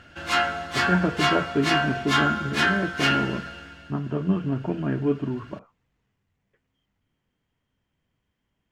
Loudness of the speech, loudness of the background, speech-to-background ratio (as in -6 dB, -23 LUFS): -27.0 LUFS, -24.0 LUFS, -3.0 dB